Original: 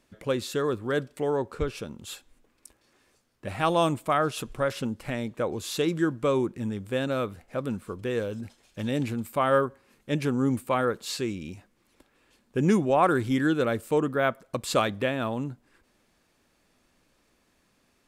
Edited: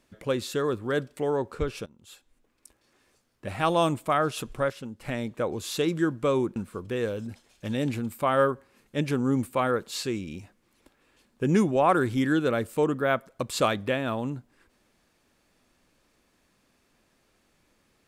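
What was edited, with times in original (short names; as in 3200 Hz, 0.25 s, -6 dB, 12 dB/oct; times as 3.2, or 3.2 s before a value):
1.86–3.5 fade in equal-power, from -19.5 dB
4.7–5.01 gain -8 dB
6.56–7.7 cut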